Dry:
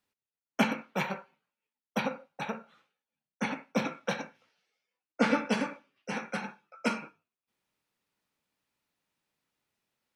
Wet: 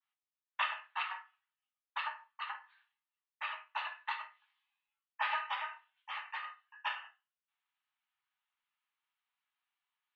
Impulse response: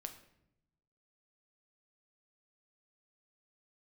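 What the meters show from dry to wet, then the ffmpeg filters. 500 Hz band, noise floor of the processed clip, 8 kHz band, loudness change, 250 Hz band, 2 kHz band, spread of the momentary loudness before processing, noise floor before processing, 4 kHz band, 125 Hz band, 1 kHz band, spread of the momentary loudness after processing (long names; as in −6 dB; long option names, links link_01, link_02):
−24.0 dB, below −85 dBFS, below −30 dB, −6.5 dB, below −40 dB, −3.5 dB, 13 LU, below −85 dBFS, −2.5 dB, below −40 dB, −2.5 dB, 12 LU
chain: -filter_complex "[0:a]highpass=frequency=480:width_type=q:width=0.5412,highpass=frequency=480:width_type=q:width=1.307,lowpass=frequency=3400:width_type=q:width=0.5176,lowpass=frequency=3400:width_type=q:width=0.7071,lowpass=frequency=3400:width_type=q:width=1.932,afreqshift=360[link_01];[1:a]atrim=start_sample=2205,afade=type=out:start_time=0.16:duration=0.01,atrim=end_sample=7497,asetrate=70560,aresample=44100[link_02];[link_01][link_02]afir=irnorm=-1:irlink=0,adynamicequalizer=threshold=0.00224:dfrequency=2200:dqfactor=0.7:tfrequency=2200:tqfactor=0.7:attack=5:release=100:ratio=0.375:range=2.5:mode=cutabove:tftype=highshelf,volume=4dB"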